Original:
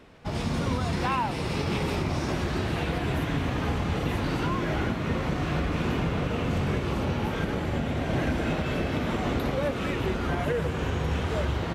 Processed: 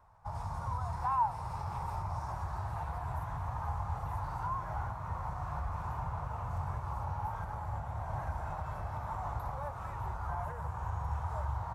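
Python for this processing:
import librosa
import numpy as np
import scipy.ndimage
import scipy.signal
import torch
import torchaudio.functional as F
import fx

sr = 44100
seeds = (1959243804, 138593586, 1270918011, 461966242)

y = fx.curve_eq(x, sr, hz=(110.0, 260.0, 460.0, 910.0, 2000.0, 3000.0, 5500.0, 8100.0, 13000.0), db=(0, -26, -18, 8, -15, -23, -12, -8, -5))
y = y * librosa.db_to_amplitude(-6.5)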